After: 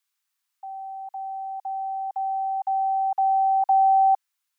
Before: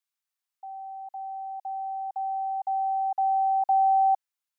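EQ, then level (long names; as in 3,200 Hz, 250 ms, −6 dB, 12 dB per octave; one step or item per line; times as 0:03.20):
high-pass filter 860 Hz 24 dB per octave
+8.5 dB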